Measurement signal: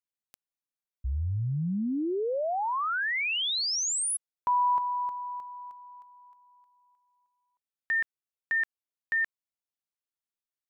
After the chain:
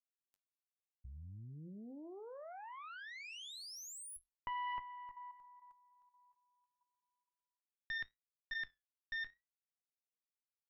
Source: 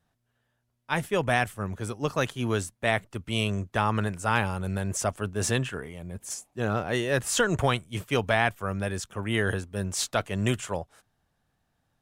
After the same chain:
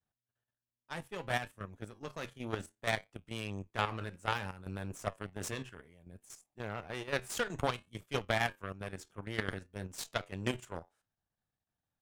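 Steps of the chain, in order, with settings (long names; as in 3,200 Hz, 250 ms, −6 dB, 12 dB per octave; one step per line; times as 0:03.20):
harmonic generator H 4 −15 dB, 7 −20 dB, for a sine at −8 dBFS
flanger 0.61 Hz, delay 8.7 ms, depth 3.6 ms, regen −70%
output level in coarse steps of 10 dB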